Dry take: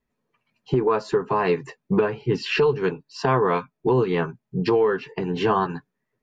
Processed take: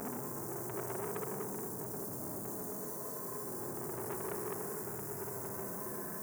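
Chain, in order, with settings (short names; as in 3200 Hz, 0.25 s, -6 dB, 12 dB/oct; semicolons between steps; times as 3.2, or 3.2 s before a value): on a send at -13.5 dB: reverb RT60 0.55 s, pre-delay 4 ms; on the sum: LFO low-pass saw down 1.1 Hz 470–4200 Hz; dark delay 0.102 s, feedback 83%, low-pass 1100 Hz, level -15 dB; in parallel at -1 dB: compressor, threshold -25 dBFS, peak gain reduction 15.5 dB; on the sum: requantised 6-bit, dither triangular; power-law curve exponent 1.4; Butterworth band-stop 3100 Hz, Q 0.55; tilt +1.5 dB/oct; Paulstretch 32×, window 0.05 s, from 2.37; core saturation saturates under 1500 Hz; gain -2.5 dB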